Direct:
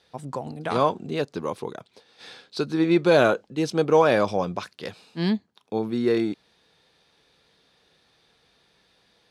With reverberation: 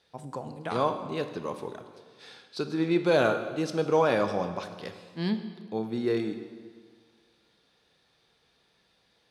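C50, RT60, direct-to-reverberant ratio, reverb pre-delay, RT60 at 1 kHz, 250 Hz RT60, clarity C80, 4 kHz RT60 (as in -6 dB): 9.0 dB, 1.6 s, 8.0 dB, 20 ms, 1.6 s, 1.7 s, 10.5 dB, 1.3 s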